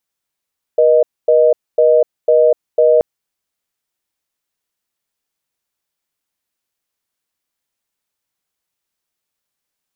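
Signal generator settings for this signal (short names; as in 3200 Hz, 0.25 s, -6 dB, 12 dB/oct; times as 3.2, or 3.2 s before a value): call progress tone reorder tone, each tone -10 dBFS 2.23 s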